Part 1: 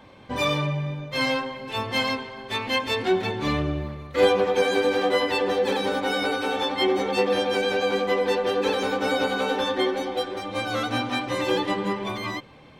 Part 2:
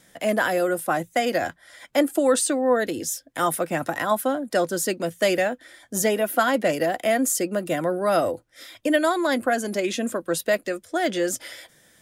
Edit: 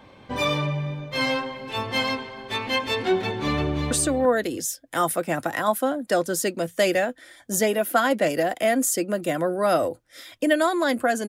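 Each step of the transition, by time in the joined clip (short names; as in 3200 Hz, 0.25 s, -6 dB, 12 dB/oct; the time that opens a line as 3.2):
part 1
3.23–3.91 echo throw 0.34 s, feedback 10%, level -6 dB
3.91 switch to part 2 from 2.34 s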